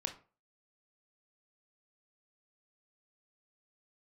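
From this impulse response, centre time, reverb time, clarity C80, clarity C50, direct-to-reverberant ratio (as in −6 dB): 12 ms, 0.40 s, 18.0 dB, 12.0 dB, 4.5 dB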